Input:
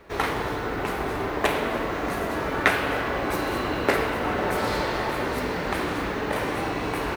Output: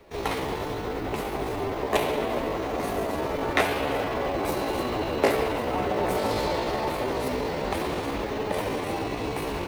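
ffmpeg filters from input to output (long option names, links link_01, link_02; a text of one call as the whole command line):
ffmpeg -i in.wav -filter_complex "[0:a]equalizer=frequency=1500:width=1.5:gain=-9,bandreject=frequency=60:width_type=h:width=6,bandreject=frequency=120:width_type=h:width=6,bandreject=frequency=180:width_type=h:width=6,bandreject=frequency=240:width_type=h:width=6,bandreject=frequency=300:width_type=h:width=6,bandreject=frequency=360:width_type=h:width=6,acrossover=split=470|1100[link_01][link_02][link_03];[link_02]dynaudnorm=framelen=370:gausssize=7:maxgain=3.5dB[link_04];[link_01][link_04][link_03]amix=inputs=3:normalize=0,atempo=0.74" out.wav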